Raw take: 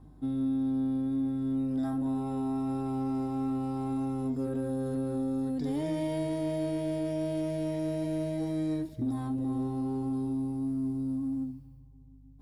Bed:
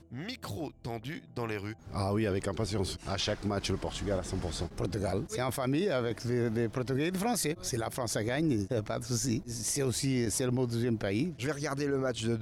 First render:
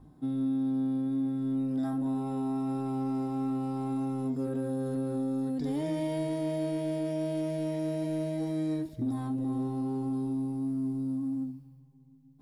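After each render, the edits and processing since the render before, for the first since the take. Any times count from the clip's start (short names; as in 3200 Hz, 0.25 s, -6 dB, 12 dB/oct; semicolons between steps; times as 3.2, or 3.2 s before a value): de-hum 50 Hz, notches 2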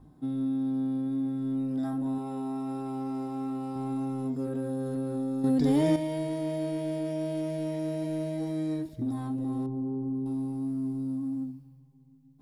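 2.18–3.76 low shelf 140 Hz -10 dB; 5.44–5.96 gain +8 dB; 9.66–10.26 formant sharpening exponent 1.5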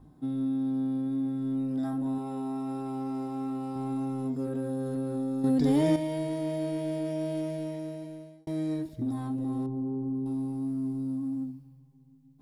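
7.37–8.47 fade out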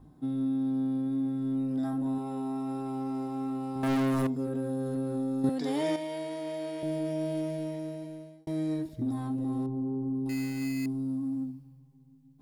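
3.83–4.27 sample leveller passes 5; 5.49–6.83 weighting filter A; 10.29–10.86 sample-rate reducer 2300 Hz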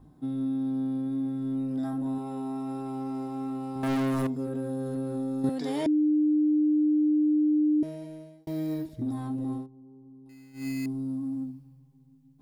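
5.86–7.83 bleep 302 Hz -20 dBFS; 8.43–8.86 careless resampling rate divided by 3×, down none, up hold; 9.53–10.68 dip -19 dB, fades 0.15 s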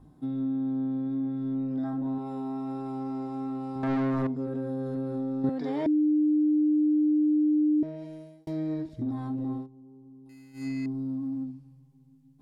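treble ducked by the level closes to 2900 Hz, closed at -26.5 dBFS; dynamic EQ 2900 Hz, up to -6 dB, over -60 dBFS, Q 2.5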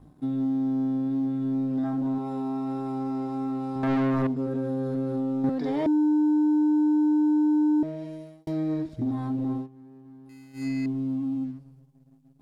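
sample leveller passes 1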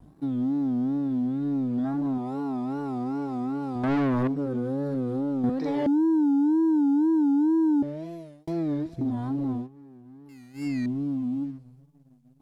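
wow and flutter 130 cents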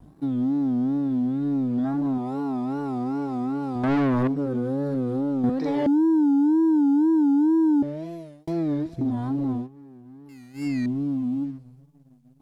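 gain +2.5 dB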